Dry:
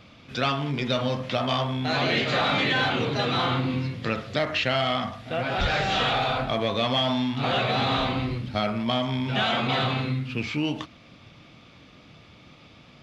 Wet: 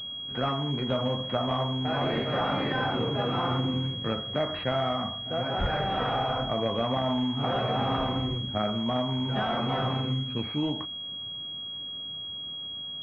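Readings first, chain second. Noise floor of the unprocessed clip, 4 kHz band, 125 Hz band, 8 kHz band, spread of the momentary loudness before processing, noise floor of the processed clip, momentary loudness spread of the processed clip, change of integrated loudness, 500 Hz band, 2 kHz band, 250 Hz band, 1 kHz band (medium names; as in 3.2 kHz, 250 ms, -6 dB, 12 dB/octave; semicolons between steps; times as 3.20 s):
-51 dBFS, -2.0 dB, -2.0 dB, no reading, 6 LU, -38 dBFS, 7 LU, -3.5 dB, -2.0 dB, -9.5 dB, -2.0 dB, -3.0 dB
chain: class-D stage that switches slowly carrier 3.3 kHz; trim -2 dB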